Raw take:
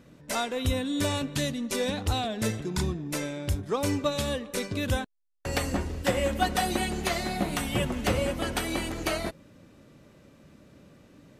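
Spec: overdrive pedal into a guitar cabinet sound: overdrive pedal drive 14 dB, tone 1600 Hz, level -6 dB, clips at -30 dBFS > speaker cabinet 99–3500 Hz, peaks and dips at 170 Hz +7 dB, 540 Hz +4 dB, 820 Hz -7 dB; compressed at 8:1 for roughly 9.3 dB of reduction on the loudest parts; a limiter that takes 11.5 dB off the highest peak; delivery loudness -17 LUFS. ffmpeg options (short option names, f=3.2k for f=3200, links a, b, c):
-filter_complex "[0:a]acompressor=threshold=-31dB:ratio=8,alimiter=level_in=6.5dB:limit=-24dB:level=0:latency=1,volume=-6.5dB,asplit=2[a][b];[b]highpass=f=720:p=1,volume=14dB,asoftclip=type=tanh:threshold=-30dB[c];[a][c]amix=inputs=2:normalize=0,lowpass=f=1.6k:p=1,volume=-6dB,highpass=99,equalizer=f=170:t=q:w=4:g=7,equalizer=f=540:t=q:w=4:g=4,equalizer=f=820:t=q:w=4:g=-7,lowpass=f=3.5k:w=0.5412,lowpass=f=3.5k:w=1.3066,volume=22dB"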